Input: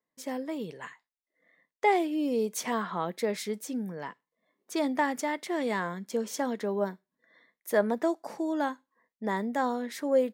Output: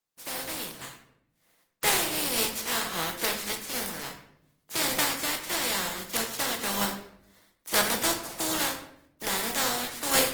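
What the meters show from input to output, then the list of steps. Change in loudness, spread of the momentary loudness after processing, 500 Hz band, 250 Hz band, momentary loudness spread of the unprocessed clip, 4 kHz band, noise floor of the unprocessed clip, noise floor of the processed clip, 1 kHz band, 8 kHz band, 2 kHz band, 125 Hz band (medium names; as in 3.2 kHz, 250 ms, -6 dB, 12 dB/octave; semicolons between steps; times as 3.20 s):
+3.0 dB, 12 LU, -5.5 dB, -6.0 dB, 11 LU, +15.5 dB, under -85 dBFS, -74 dBFS, -1.0 dB, +14.5 dB, +6.0 dB, +1.0 dB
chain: spectral contrast reduction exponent 0.23; simulated room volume 170 m³, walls mixed, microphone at 0.68 m; Opus 20 kbps 48 kHz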